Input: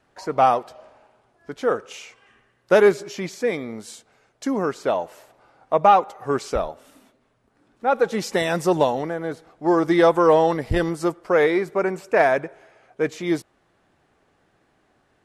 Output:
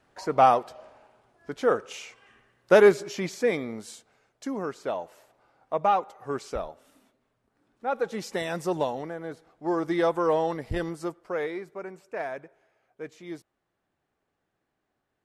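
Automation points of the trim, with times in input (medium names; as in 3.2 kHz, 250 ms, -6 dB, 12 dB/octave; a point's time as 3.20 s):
3.57 s -1.5 dB
4.52 s -8.5 dB
10.89 s -8.5 dB
11.81 s -16 dB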